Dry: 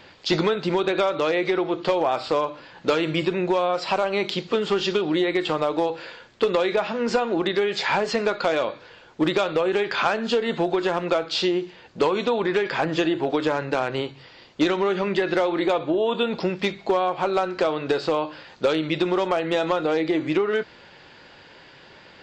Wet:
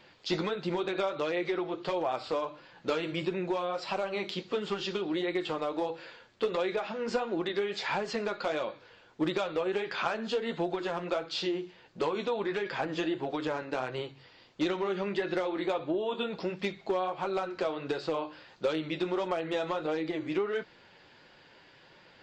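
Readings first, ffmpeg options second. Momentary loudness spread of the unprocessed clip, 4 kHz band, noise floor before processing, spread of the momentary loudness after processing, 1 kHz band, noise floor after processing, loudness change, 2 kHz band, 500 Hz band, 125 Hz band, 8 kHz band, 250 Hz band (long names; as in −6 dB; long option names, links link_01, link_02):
4 LU, −9.5 dB, −49 dBFS, 4 LU, −9.5 dB, −58 dBFS, −9.0 dB, −9.5 dB, −9.0 dB, −9.0 dB, can't be measured, −9.0 dB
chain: -af "flanger=delay=5.4:depth=5.3:regen=-38:speed=1.5:shape=sinusoidal,volume=-5.5dB"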